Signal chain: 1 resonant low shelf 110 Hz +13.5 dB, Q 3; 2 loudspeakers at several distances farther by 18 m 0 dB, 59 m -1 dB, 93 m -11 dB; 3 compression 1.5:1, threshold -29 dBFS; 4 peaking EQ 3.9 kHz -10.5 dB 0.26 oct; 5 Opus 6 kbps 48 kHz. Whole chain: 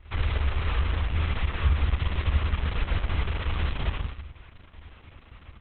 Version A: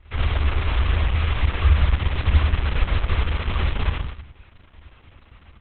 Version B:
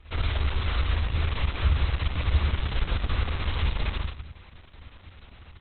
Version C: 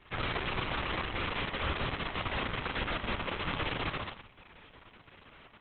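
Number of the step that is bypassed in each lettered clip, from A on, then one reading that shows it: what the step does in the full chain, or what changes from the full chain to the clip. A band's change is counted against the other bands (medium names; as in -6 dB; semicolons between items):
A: 3, mean gain reduction 3.5 dB; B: 4, 4 kHz band +3.0 dB; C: 1, 125 Hz band -15.0 dB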